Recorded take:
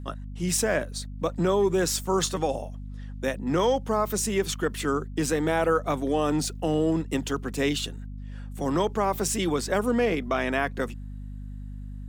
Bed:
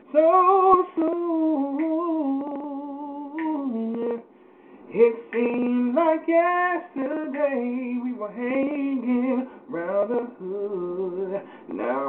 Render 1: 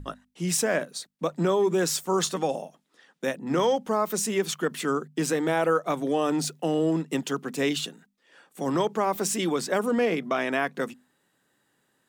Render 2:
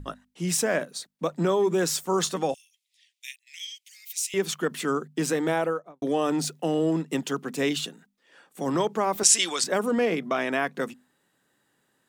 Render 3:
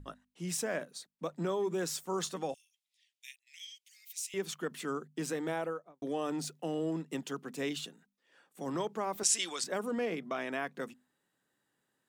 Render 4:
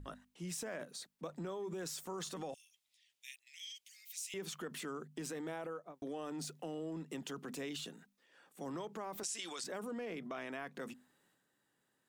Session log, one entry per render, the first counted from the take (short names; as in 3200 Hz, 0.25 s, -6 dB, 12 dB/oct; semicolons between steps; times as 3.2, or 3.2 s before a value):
notches 50/100/150/200/250 Hz
2.54–4.34 steep high-pass 2100 Hz 72 dB/oct; 5.49–6.02 studio fade out; 9.23–9.64 weighting filter ITU-R 468
gain -10 dB
transient shaper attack -3 dB, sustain +6 dB; compressor 4:1, threshold -41 dBFS, peak gain reduction 13.5 dB